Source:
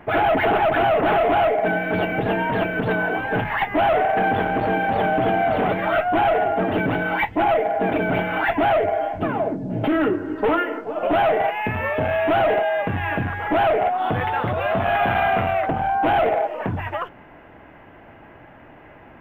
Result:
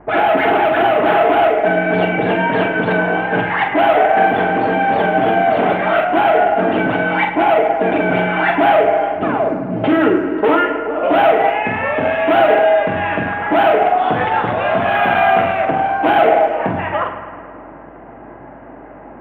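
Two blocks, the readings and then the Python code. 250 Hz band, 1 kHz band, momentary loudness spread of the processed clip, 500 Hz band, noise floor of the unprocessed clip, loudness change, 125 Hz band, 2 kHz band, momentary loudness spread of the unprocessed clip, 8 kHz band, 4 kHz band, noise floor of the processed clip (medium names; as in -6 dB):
+6.0 dB, +6.0 dB, 6 LU, +6.5 dB, -46 dBFS, +6.0 dB, +1.5 dB, +6.0 dB, 6 LU, no reading, +6.0 dB, -36 dBFS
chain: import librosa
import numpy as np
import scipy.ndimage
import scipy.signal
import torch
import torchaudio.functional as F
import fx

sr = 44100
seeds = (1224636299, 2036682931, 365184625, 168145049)

p1 = fx.env_lowpass(x, sr, base_hz=1000.0, full_db=-15.5)
p2 = scipy.signal.sosfilt(scipy.signal.butter(2, 180.0, 'highpass', fs=sr, output='sos'), p1)
p3 = fx.rider(p2, sr, range_db=10, speed_s=2.0)
p4 = p2 + (p3 * librosa.db_to_amplitude(0.0))
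p5 = fx.add_hum(p4, sr, base_hz=50, snr_db=34)
p6 = fx.doubler(p5, sr, ms=44.0, db=-6.0)
p7 = p6 + fx.echo_bbd(p6, sr, ms=106, stages=2048, feedback_pct=69, wet_db=-11.0, dry=0)
y = p7 * librosa.db_to_amplitude(-1.5)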